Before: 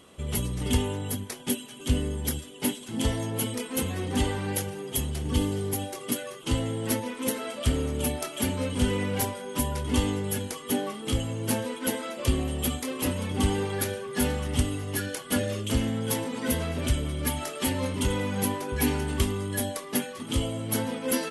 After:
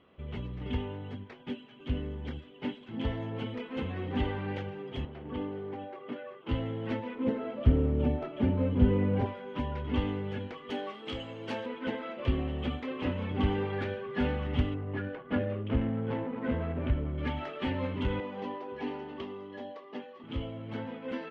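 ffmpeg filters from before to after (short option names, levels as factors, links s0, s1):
-filter_complex "[0:a]asettb=1/sr,asplit=3[s0][s1][s2];[s0]atrim=end=5.054[s3];[s1]atrim=start=5.05:end=6.49,asetpts=PTS-STARTPTS,afade=t=in:d=0.004:c=qsin,afade=t=out:st=1.436:d=0.004:c=qsin,bandpass=f=710:t=q:w=0.52[s4];[s2]atrim=start=6.486[s5];[s3][s4]acrossfade=d=0.004:c1=hsin:c2=qsin[s6];[s6][s5]acrossfade=d=0.004:c1=qsin:c2=hsin,asettb=1/sr,asplit=3[s7][s8][s9];[s7]atrim=end=7.154[s10];[s8]atrim=start=7.15:end=9.26,asetpts=PTS-STARTPTS,afade=t=in:d=0.004:c=qsin,afade=t=out:st=2.106:d=0.004:c=qsin,tiltshelf=f=940:g=7.5[s11];[s9]atrim=start=9.256[s12];[s10][s11]acrossfade=d=0.004:c1=hsin:c2=qsin[s13];[s13][s12]acrossfade=d=0.004:c1=qsin:c2=hsin,asettb=1/sr,asplit=3[s14][s15][s16];[s14]atrim=end=10.704[s17];[s15]atrim=start=10.7:end=11.66,asetpts=PTS-STARTPTS,afade=t=in:d=0.004:c=qsin,afade=t=out:st=0.956:d=0.004:c=qsin,bass=f=250:g=-12,treble=f=4000:g=13[s18];[s16]atrim=start=11.656[s19];[s17][s18]acrossfade=d=0.004:c1=hsin:c2=qsin[s20];[s20][s19]acrossfade=d=0.004:c1=qsin:c2=hsin,asettb=1/sr,asplit=3[s21][s22][s23];[s21]atrim=end=14.744[s24];[s22]atrim=start=14.74:end=17.18,asetpts=PTS-STARTPTS,afade=t=in:d=0.004:c=qsin,afade=t=out:st=2.436:d=0.004:c=qsin,adynamicsmooth=sensitivity=2.5:basefreq=1100[s25];[s23]atrim=start=17.176[s26];[s24][s25]acrossfade=d=0.004:c1=hsin:c2=qsin[s27];[s27][s26]acrossfade=d=0.004:c1=qsin:c2=hsin,asettb=1/sr,asplit=3[s28][s29][s30];[s28]atrim=end=18.204[s31];[s29]atrim=start=18.2:end=20.24,asetpts=PTS-STARTPTS,afade=t=in:d=0.004:c=qsin,afade=t=out:st=2.036:d=0.004:c=qsin,highpass=310,equalizer=f=1500:t=q:w=4:g=-9,equalizer=f=2300:t=q:w=4:g=-8,equalizer=f=3600:t=q:w=4:g=-4,lowpass=f=6700:w=0.5412,lowpass=f=6700:w=1.3066[s32];[s30]atrim=start=20.236[s33];[s31][s32]acrossfade=d=0.004:c1=hsin:c2=qsin[s34];[s34][s33]acrossfade=d=0.004:c1=qsin:c2=hsin,lowpass=f=2900:w=0.5412,lowpass=f=2900:w=1.3066,dynaudnorm=f=610:g=11:m=1.88,volume=0.398"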